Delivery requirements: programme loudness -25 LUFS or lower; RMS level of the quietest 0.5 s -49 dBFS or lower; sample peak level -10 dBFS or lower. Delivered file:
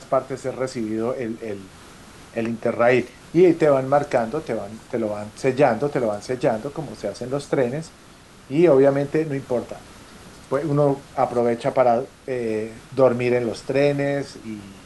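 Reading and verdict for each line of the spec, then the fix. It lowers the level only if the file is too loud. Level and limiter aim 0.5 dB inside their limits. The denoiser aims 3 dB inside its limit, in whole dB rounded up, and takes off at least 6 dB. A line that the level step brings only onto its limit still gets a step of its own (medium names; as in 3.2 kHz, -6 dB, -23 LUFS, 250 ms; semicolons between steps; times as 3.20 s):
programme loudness -22.0 LUFS: fail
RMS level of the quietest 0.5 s -47 dBFS: fail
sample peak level -5.5 dBFS: fail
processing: trim -3.5 dB; peak limiter -10.5 dBFS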